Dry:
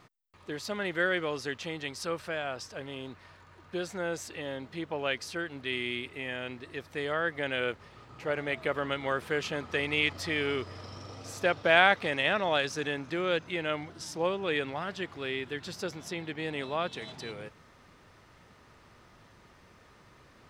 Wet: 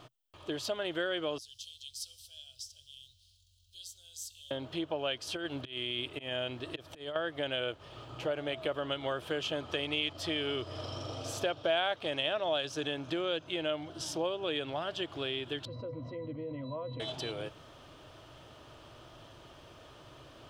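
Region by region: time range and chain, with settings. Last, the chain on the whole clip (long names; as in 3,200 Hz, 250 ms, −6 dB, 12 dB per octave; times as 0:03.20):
0:01.38–0:04.51: inverse Chebyshev band-stop filter 150–2,100 Hz + high-shelf EQ 8,900 Hz +9.5 dB + tuned comb filter 77 Hz, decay 1.9 s, mix 50%
0:05.27–0:07.16: compressor whose output falls as the input rises −36 dBFS, ratio −0.5 + volume swells 198 ms
0:15.65–0:17.00: head-to-tape spacing loss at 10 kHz 22 dB + resonances in every octave B, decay 0.12 s + envelope flattener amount 70%
whole clip: thirty-one-band graphic EQ 125 Hz +5 dB, 200 Hz −10 dB, 315 Hz +6 dB, 630 Hz +9 dB, 2,000 Hz −9 dB, 3,150 Hz +11 dB; downward compressor 2.5 to 1, threshold −37 dBFS; level +2.5 dB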